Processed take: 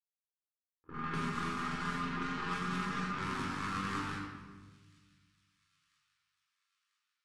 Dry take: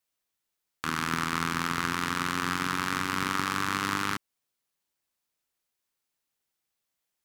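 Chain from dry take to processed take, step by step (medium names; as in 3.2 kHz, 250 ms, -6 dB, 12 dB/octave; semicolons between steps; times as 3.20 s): low-pass 9.9 kHz 24 dB/octave; gate -26 dBFS, range -33 dB; level-controlled noise filter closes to 550 Hz, open at -37.5 dBFS; 0.93–3.12 s: comb 4.9 ms, depth 89%; compression, threshold -39 dBFS, peak gain reduction 9 dB; feedback echo behind a high-pass 993 ms, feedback 50%, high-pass 3.3 kHz, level -22 dB; simulated room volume 980 m³, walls mixed, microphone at 4.1 m; trim -1 dB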